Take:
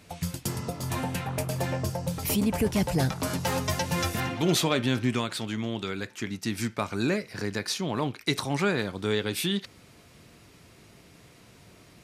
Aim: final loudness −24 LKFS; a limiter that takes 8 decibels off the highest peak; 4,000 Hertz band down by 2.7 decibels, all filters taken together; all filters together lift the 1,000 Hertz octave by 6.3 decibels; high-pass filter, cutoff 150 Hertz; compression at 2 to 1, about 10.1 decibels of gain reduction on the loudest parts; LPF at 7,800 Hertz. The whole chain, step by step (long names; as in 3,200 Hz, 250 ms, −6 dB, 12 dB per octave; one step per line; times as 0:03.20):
high-pass filter 150 Hz
low-pass filter 7,800 Hz
parametric band 1,000 Hz +8 dB
parametric band 4,000 Hz −3.5 dB
downward compressor 2 to 1, threshold −39 dBFS
level +14.5 dB
brickwall limiter −12 dBFS